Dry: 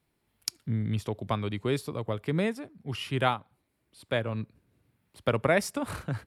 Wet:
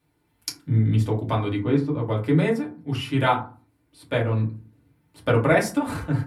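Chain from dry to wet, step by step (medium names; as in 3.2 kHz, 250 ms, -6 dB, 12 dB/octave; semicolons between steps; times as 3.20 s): 1.59–2.07 s: tape spacing loss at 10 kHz 21 dB; FDN reverb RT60 0.36 s, low-frequency decay 1.4×, high-frequency decay 0.45×, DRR -4 dB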